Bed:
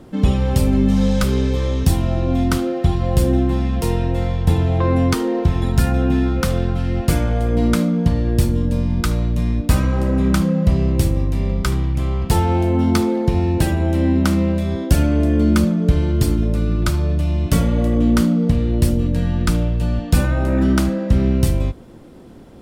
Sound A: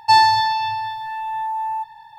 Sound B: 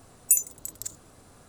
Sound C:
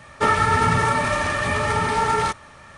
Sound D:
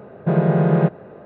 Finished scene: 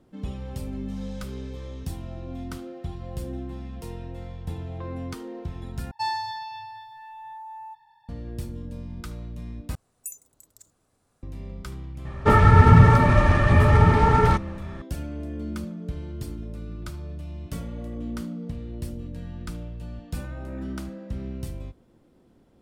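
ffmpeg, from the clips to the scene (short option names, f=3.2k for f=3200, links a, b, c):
-filter_complex "[0:a]volume=-17.5dB[a];[3:a]aemphasis=mode=reproduction:type=riaa[b];[a]asplit=3[c][d][e];[c]atrim=end=5.914[f];[1:a]atrim=end=2.18,asetpts=PTS-STARTPTS,volume=-15.5dB[g];[d]atrim=start=8.086:end=9.754[h];[2:a]atrim=end=1.48,asetpts=PTS-STARTPTS,volume=-16.5dB[i];[e]atrim=start=11.226[j];[b]atrim=end=2.77,asetpts=PTS-STARTPTS,volume=-0.5dB,afade=t=in:d=0.004:c=hsin,afade=t=out:st=2.766:d=0.004:c=hsin,adelay=12050[k];[f][g]acrossfade=d=0.004:c1=hsin:c2=hsin[l];[l][h]acrossfade=d=0.004:c1=hsin:c2=hsin[m];[m][i]acrossfade=d=0.004:c1=hsin:c2=hsin[n];[n][j]acrossfade=d=0.004:c1=hsin:c2=hsin[o];[o][k]amix=inputs=2:normalize=0"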